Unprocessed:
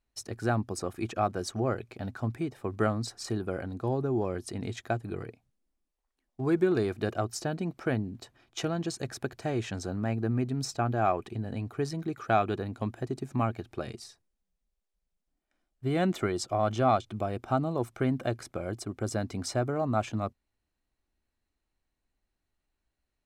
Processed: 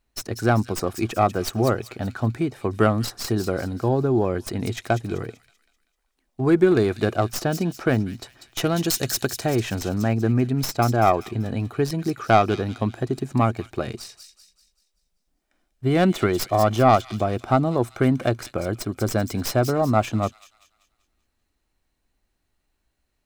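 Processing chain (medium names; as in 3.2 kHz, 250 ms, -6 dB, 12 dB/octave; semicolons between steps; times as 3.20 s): tracing distortion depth 0.082 ms; 8.65–9.44 s: treble shelf 3.8 kHz +11.5 dB; feedback echo behind a high-pass 193 ms, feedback 42%, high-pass 3.6 kHz, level -6 dB; trim +8.5 dB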